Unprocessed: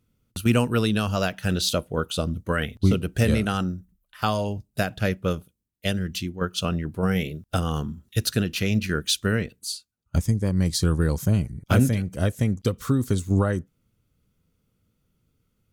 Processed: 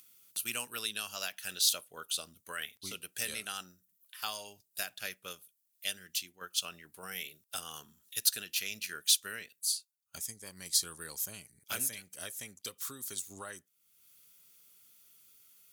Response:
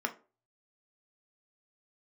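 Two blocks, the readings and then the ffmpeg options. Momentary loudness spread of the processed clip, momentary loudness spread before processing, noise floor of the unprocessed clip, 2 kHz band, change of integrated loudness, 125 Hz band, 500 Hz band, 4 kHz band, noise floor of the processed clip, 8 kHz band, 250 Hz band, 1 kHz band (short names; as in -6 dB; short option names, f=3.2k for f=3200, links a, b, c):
17 LU, 7 LU, -74 dBFS, -10.0 dB, -10.0 dB, -35.5 dB, -23.0 dB, -4.0 dB, -78 dBFS, +1.0 dB, -30.5 dB, -15.5 dB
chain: -filter_complex "[0:a]aderivative,acompressor=mode=upward:threshold=-46dB:ratio=2.5,asplit=2[a][b];[1:a]atrim=start_sample=2205,asetrate=79380,aresample=44100[c];[b][c]afir=irnorm=-1:irlink=0,volume=-13dB[d];[a][d]amix=inputs=2:normalize=0"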